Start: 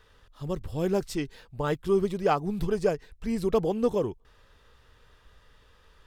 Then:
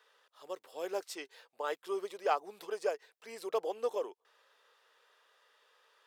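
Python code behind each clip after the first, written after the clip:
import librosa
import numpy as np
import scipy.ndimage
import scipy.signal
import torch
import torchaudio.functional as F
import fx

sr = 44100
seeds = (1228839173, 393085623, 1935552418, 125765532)

y = scipy.signal.sosfilt(scipy.signal.butter(4, 470.0, 'highpass', fs=sr, output='sos'), x)
y = y * 10.0 ** (-5.0 / 20.0)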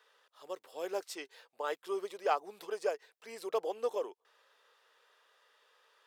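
y = x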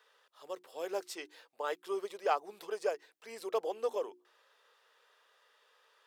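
y = fx.hum_notches(x, sr, base_hz=60, count=6)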